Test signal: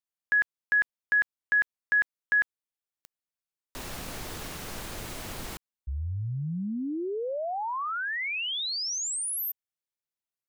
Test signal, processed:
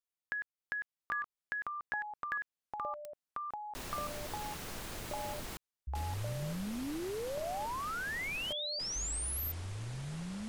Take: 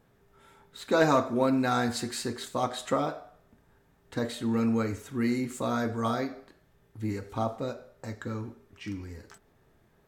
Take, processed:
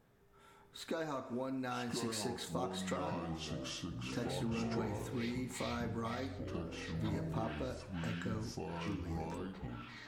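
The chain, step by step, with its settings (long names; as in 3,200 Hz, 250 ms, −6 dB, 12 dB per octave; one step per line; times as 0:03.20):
downward compressor 10 to 1, threshold −32 dBFS
delay with pitch and tempo change per echo 648 ms, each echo −6 semitones, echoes 3
level −4.5 dB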